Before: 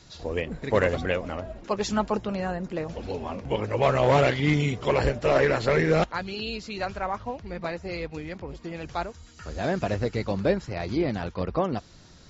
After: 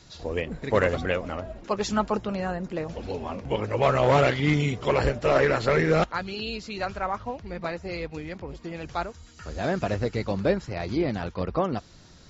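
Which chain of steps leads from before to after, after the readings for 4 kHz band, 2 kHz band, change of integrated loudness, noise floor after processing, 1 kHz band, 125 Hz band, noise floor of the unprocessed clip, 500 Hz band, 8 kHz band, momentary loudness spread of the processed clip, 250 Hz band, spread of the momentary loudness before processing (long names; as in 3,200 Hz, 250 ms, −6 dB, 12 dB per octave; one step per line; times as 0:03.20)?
0.0 dB, +0.5 dB, 0.0 dB, −51 dBFS, +1.0 dB, 0.0 dB, −51 dBFS, 0.0 dB, can't be measured, 13 LU, 0.0 dB, 13 LU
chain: dynamic equaliser 1,300 Hz, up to +4 dB, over −43 dBFS, Q 5.2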